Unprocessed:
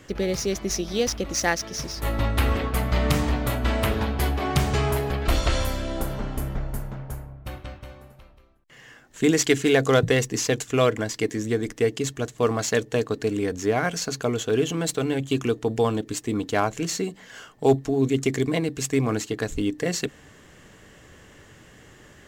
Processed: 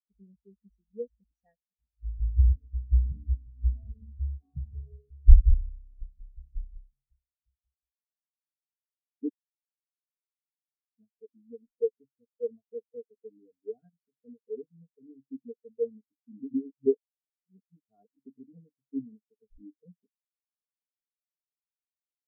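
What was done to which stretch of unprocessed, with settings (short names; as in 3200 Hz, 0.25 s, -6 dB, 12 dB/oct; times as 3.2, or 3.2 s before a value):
9.29–10.98 mute
16.4–18.19 reverse
whole clip: low shelf 350 Hz +9 dB; comb 4.3 ms, depth 44%; spectral expander 4:1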